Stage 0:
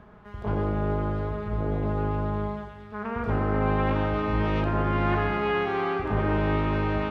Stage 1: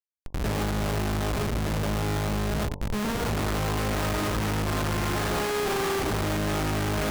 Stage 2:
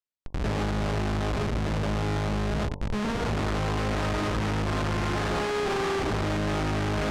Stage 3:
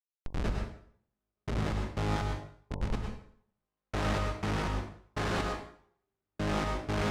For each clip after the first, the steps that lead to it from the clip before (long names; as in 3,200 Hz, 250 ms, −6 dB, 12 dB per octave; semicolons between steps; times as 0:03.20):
bit-depth reduction 10 bits, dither none; comparator with hysteresis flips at −36.5 dBFS; hum removal 46.66 Hz, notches 23
high-frequency loss of the air 74 metres
brickwall limiter −31 dBFS, peak gain reduction 10.5 dB; gate pattern ".x....x.x." 61 BPM −60 dB; on a send at −2 dB: convolution reverb RT60 0.60 s, pre-delay 92 ms; on the sum: level +4 dB